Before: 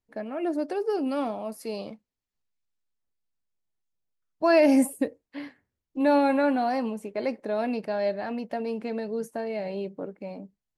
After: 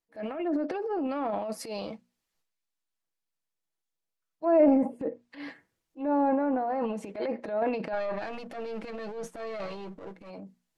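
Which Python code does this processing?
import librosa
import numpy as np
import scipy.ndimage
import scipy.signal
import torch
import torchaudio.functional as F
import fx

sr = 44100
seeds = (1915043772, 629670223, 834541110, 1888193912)

y = fx.halfwave_gain(x, sr, db=-12.0, at=(7.92, 10.29), fade=0.02)
y = fx.low_shelf(y, sr, hz=180.0, db=-10.0)
y = fx.hum_notches(y, sr, base_hz=60, count=4)
y = fx.env_lowpass_down(y, sr, base_hz=780.0, full_db=-22.5)
y = y + 0.41 * np.pad(y, (int(6.1 * sr / 1000.0), 0))[:len(y)]
y = fx.transient(y, sr, attack_db=-10, sustain_db=9)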